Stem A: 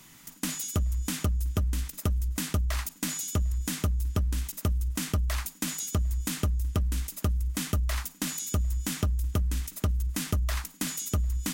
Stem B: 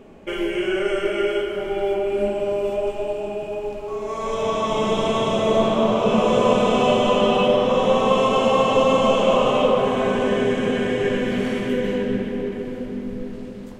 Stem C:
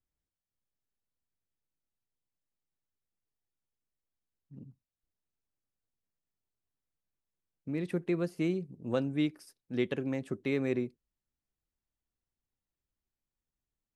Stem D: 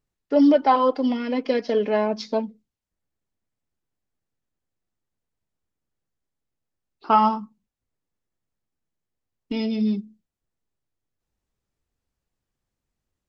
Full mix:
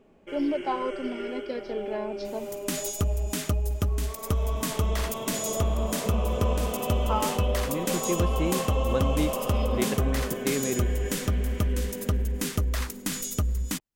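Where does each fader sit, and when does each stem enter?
+1.0, -13.5, +1.5, -11.5 dB; 2.25, 0.00, 0.00, 0.00 s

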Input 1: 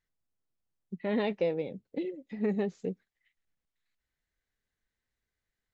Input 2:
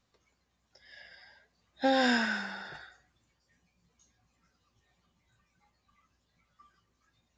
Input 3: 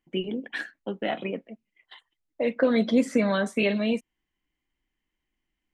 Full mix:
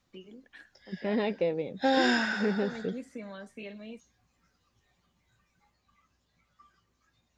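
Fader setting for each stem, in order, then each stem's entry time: +0.5, +1.0, -19.0 dB; 0.00, 0.00, 0.00 s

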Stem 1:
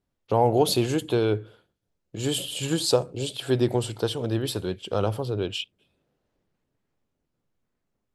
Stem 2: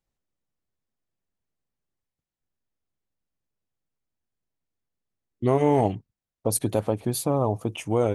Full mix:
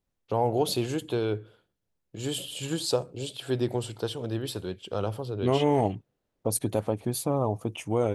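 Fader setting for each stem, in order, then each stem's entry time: -5.0, -3.0 dB; 0.00, 0.00 s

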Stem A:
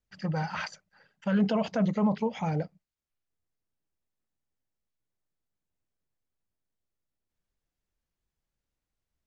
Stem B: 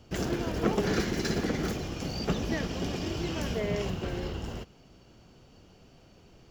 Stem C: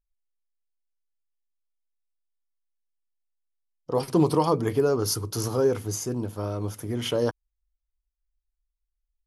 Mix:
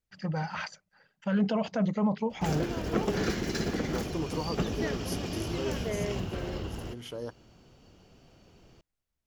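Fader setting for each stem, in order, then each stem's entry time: -1.5, -1.5, -13.5 dB; 0.00, 2.30, 0.00 s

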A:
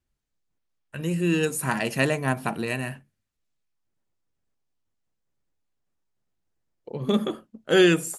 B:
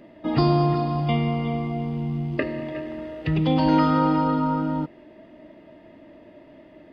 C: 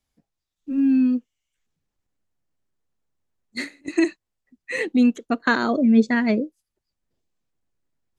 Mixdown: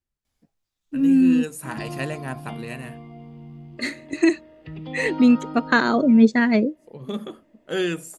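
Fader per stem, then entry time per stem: -7.0, -14.0, +2.0 dB; 0.00, 1.40, 0.25 s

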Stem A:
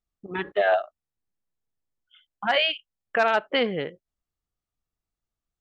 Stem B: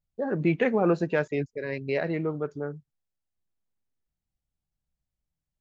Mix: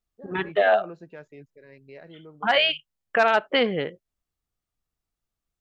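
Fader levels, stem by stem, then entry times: +2.0, -17.5 dB; 0.00, 0.00 s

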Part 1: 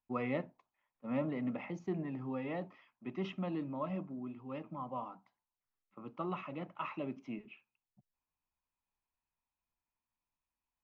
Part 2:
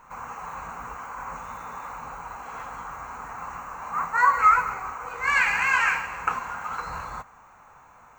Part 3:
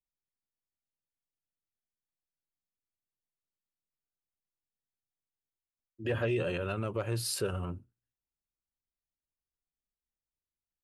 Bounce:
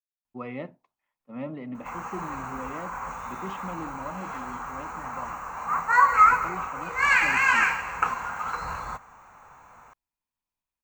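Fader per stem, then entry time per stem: 0.0 dB, +1.0 dB, off; 0.25 s, 1.75 s, off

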